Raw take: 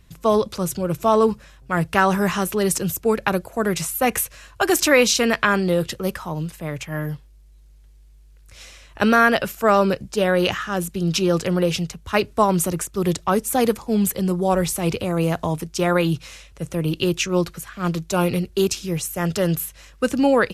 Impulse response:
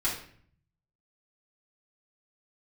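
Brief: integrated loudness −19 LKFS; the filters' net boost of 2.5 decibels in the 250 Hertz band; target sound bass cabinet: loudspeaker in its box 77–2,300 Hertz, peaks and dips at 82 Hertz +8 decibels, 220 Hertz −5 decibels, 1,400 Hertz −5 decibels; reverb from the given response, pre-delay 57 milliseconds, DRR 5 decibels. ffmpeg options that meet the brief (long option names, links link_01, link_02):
-filter_complex "[0:a]equalizer=frequency=250:width_type=o:gain=6.5,asplit=2[link_01][link_02];[1:a]atrim=start_sample=2205,adelay=57[link_03];[link_02][link_03]afir=irnorm=-1:irlink=0,volume=-12.5dB[link_04];[link_01][link_04]amix=inputs=2:normalize=0,highpass=frequency=77:width=0.5412,highpass=frequency=77:width=1.3066,equalizer=frequency=82:width_type=q:width=4:gain=8,equalizer=frequency=220:width_type=q:width=4:gain=-5,equalizer=frequency=1400:width_type=q:width=4:gain=-5,lowpass=frequency=2300:width=0.5412,lowpass=frequency=2300:width=1.3066"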